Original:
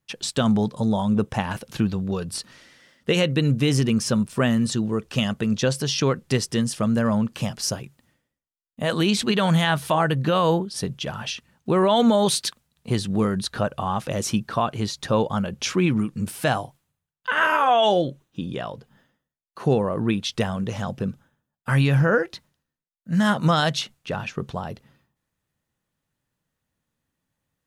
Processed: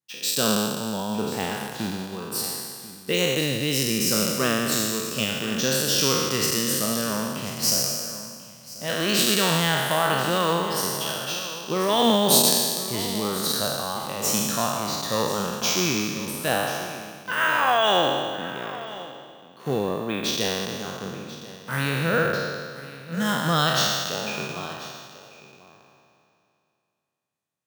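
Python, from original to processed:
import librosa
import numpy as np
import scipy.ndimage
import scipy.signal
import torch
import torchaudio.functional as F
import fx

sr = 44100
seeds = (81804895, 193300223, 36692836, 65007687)

p1 = fx.spec_trails(x, sr, decay_s=2.58)
p2 = scipy.signal.sosfilt(scipy.signal.butter(2, 140.0, 'highpass', fs=sr, output='sos'), p1)
p3 = fx.high_shelf(p2, sr, hz=3900.0, db=10.5)
p4 = p3 + fx.echo_single(p3, sr, ms=1039, db=-12.5, dry=0)
p5 = np.repeat(scipy.signal.resample_poly(p4, 1, 2), 2)[:len(p4)]
p6 = fx.upward_expand(p5, sr, threshold_db=-31.0, expansion=1.5)
y = p6 * 10.0 ** (-4.5 / 20.0)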